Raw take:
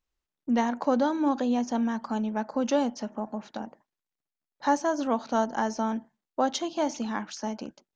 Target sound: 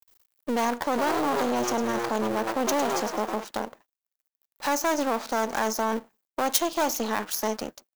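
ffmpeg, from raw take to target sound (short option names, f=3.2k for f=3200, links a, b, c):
-filter_complex "[0:a]tiltshelf=f=1.2k:g=5,asplit=3[a][b][c];[a]afade=t=out:st=0.93:d=0.02[d];[b]asplit=6[e][f][g][h][i][j];[f]adelay=105,afreqshift=120,volume=-7dB[k];[g]adelay=210,afreqshift=240,volume=-14.1dB[l];[h]adelay=315,afreqshift=360,volume=-21.3dB[m];[i]adelay=420,afreqshift=480,volume=-28.4dB[n];[j]adelay=525,afreqshift=600,volume=-35.5dB[o];[e][k][l][m][n][o]amix=inputs=6:normalize=0,afade=t=in:st=0.93:d=0.02,afade=t=out:st=3.43:d=0.02[p];[c]afade=t=in:st=3.43:d=0.02[q];[d][p][q]amix=inputs=3:normalize=0,alimiter=limit=-19dB:level=0:latency=1:release=23,aeval=exprs='max(val(0),0)':c=same,aemphasis=mode=production:type=riaa,acompressor=mode=upward:threshold=-57dB:ratio=2.5,volume=8dB"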